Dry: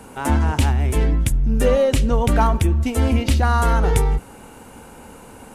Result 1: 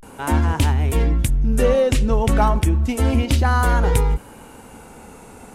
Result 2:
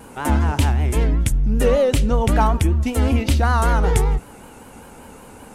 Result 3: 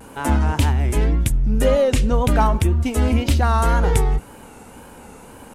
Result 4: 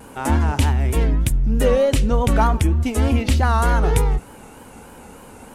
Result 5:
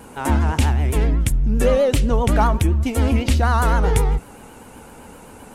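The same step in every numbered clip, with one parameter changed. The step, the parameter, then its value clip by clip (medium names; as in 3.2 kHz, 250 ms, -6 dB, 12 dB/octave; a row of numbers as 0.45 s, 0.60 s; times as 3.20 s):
vibrato, rate: 0.33 Hz, 5.2 Hz, 1.9 Hz, 3.3 Hz, 7.8 Hz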